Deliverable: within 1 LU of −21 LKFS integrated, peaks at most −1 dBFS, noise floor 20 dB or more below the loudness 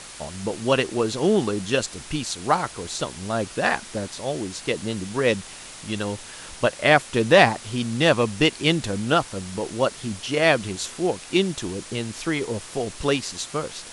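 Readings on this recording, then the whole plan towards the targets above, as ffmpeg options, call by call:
background noise floor −41 dBFS; target noise floor −44 dBFS; integrated loudness −23.5 LKFS; sample peak −1.0 dBFS; target loudness −21.0 LKFS
→ -af "afftdn=noise_reduction=6:noise_floor=-41"
-af "volume=2.5dB,alimiter=limit=-1dB:level=0:latency=1"

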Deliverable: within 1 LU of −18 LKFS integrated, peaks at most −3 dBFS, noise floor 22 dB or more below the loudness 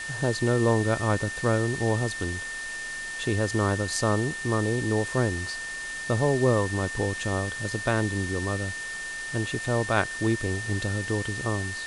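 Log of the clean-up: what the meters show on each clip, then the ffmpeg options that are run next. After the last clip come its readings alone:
interfering tone 1,800 Hz; level of the tone −33 dBFS; background noise floor −35 dBFS; target noise floor −49 dBFS; integrated loudness −27.0 LKFS; sample peak −8.5 dBFS; target loudness −18.0 LKFS
→ -af "bandreject=frequency=1800:width=30"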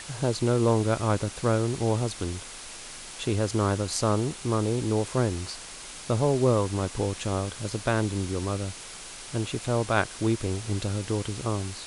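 interfering tone none found; background noise floor −42 dBFS; target noise floor −50 dBFS
→ -af "afftdn=noise_reduction=8:noise_floor=-42"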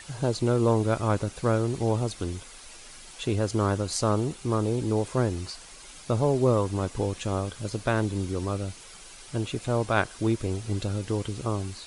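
background noise floor −47 dBFS; target noise floor −50 dBFS
→ -af "afftdn=noise_reduction=6:noise_floor=-47"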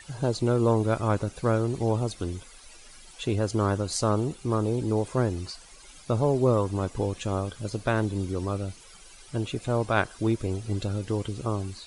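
background noise floor −50 dBFS; integrated loudness −27.5 LKFS; sample peak −9.0 dBFS; target loudness −18.0 LKFS
→ -af "volume=9.5dB,alimiter=limit=-3dB:level=0:latency=1"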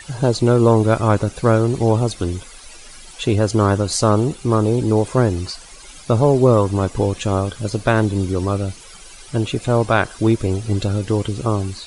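integrated loudness −18.5 LKFS; sample peak −3.0 dBFS; background noise floor −41 dBFS

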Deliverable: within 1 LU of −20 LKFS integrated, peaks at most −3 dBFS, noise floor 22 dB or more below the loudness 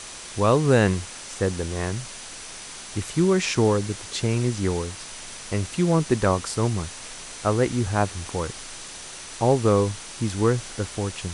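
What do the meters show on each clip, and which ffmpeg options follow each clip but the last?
interfering tone 6,000 Hz; level of the tone −48 dBFS; background noise floor −39 dBFS; target noise floor −46 dBFS; integrated loudness −24.0 LKFS; sample peak −4.5 dBFS; target loudness −20.0 LKFS
→ -af "bandreject=frequency=6000:width=30"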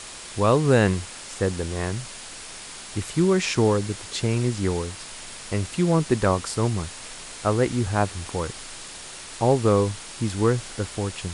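interfering tone none found; background noise floor −40 dBFS; target noise floor −46 dBFS
→ -af "afftdn=noise_reduction=6:noise_floor=-40"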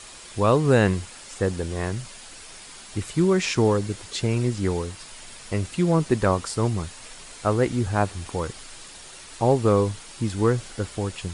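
background noise floor −43 dBFS; target noise floor −46 dBFS
→ -af "afftdn=noise_reduction=6:noise_floor=-43"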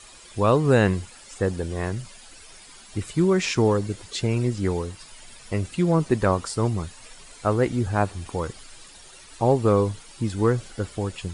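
background noise floor −47 dBFS; integrated loudness −24.0 LKFS; sample peak −5.0 dBFS; target loudness −20.0 LKFS
→ -af "volume=4dB,alimiter=limit=-3dB:level=0:latency=1"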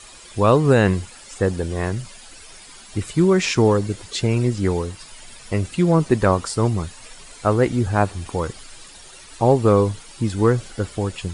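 integrated loudness −20.5 LKFS; sample peak −3.0 dBFS; background noise floor −43 dBFS

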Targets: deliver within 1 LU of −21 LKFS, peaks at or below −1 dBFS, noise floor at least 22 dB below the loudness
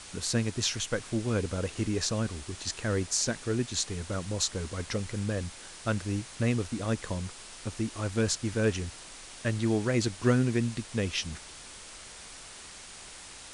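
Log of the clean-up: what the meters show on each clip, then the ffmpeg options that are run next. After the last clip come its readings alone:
background noise floor −47 dBFS; target noise floor −53 dBFS; integrated loudness −31.0 LKFS; sample peak −11.5 dBFS; target loudness −21.0 LKFS
→ -af "afftdn=noise_reduction=6:noise_floor=-47"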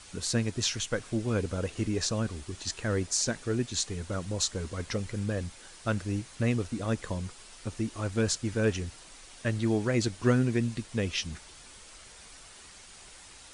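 background noise floor −51 dBFS; target noise floor −53 dBFS
→ -af "afftdn=noise_reduction=6:noise_floor=-51"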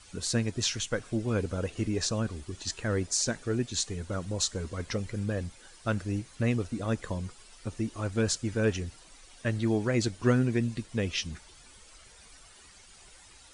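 background noise floor −54 dBFS; integrated loudness −31.0 LKFS; sample peak −11.5 dBFS; target loudness −21.0 LKFS
→ -af "volume=10dB"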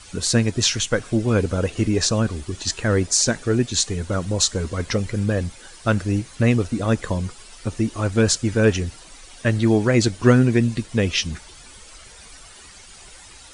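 integrated loudness −21.0 LKFS; sample peak −1.5 dBFS; background noise floor −44 dBFS

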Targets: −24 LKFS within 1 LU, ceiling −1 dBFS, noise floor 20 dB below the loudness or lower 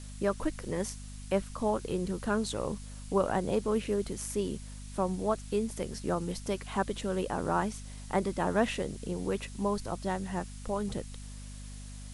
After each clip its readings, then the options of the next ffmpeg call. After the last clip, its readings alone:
mains hum 50 Hz; hum harmonics up to 250 Hz; level of the hum −42 dBFS; background noise floor −45 dBFS; target noise floor −53 dBFS; integrated loudness −33.0 LKFS; sample peak −13.0 dBFS; target loudness −24.0 LKFS
→ -af "bandreject=frequency=50:width_type=h:width=6,bandreject=frequency=100:width_type=h:width=6,bandreject=frequency=150:width_type=h:width=6,bandreject=frequency=200:width_type=h:width=6,bandreject=frequency=250:width_type=h:width=6"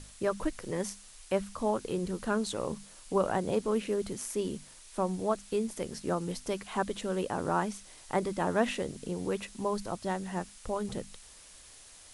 mains hum none found; background noise floor −53 dBFS; target noise floor −54 dBFS
→ -af "afftdn=noise_reduction=6:noise_floor=-53"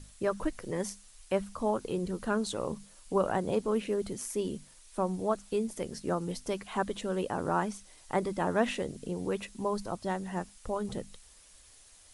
background noise floor −57 dBFS; integrated loudness −33.5 LKFS; sample peak −12.5 dBFS; target loudness −24.0 LKFS
→ -af "volume=9.5dB"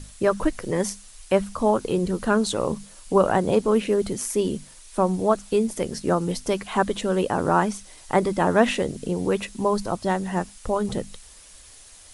integrated loudness −24.0 LKFS; sample peak −3.0 dBFS; background noise floor −47 dBFS

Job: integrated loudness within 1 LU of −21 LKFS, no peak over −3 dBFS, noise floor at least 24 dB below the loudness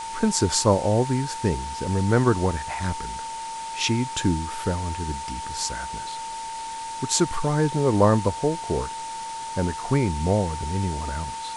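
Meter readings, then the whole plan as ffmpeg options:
interfering tone 900 Hz; level of the tone −31 dBFS; background noise floor −33 dBFS; target noise floor −49 dBFS; integrated loudness −25.0 LKFS; sample peak −5.5 dBFS; target loudness −21.0 LKFS
→ -af "bandreject=frequency=900:width=30"
-af "afftdn=noise_reduction=16:noise_floor=-33"
-af "volume=4dB,alimiter=limit=-3dB:level=0:latency=1"

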